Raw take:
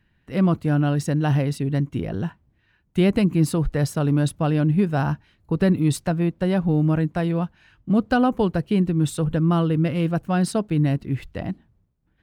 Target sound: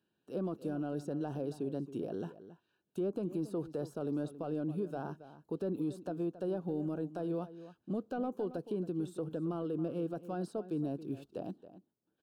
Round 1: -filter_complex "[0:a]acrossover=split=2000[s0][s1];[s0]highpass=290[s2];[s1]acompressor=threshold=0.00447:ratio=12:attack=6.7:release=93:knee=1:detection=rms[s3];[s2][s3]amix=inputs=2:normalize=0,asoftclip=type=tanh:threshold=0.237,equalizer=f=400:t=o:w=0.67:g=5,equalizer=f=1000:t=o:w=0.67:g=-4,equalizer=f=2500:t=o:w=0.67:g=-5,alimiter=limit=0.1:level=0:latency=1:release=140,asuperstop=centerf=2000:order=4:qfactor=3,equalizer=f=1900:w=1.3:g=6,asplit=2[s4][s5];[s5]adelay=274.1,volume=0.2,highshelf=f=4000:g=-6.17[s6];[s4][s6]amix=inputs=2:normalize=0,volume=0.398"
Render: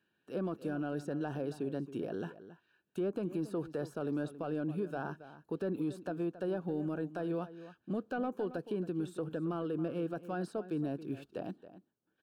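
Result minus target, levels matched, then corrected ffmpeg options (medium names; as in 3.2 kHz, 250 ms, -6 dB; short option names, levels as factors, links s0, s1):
2 kHz band +8.0 dB
-filter_complex "[0:a]acrossover=split=2000[s0][s1];[s0]highpass=290[s2];[s1]acompressor=threshold=0.00447:ratio=12:attack=6.7:release=93:knee=1:detection=rms[s3];[s2][s3]amix=inputs=2:normalize=0,asoftclip=type=tanh:threshold=0.237,equalizer=f=400:t=o:w=0.67:g=5,equalizer=f=1000:t=o:w=0.67:g=-4,equalizer=f=2500:t=o:w=0.67:g=-5,alimiter=limit=0.1:level=0:latency=1:release=140,asuperstop=centerf=2000:order=4:qfactor=3,equalizer=f=1900:w=1.3:g=-5.5,asplit=2[s4][s5];[s5]adelay=274.1,volume=0.2,highshelf=f=4000:g=-6.17[s6];[s4][s6]amix=inputs=2:normalize=0,volume=0.398"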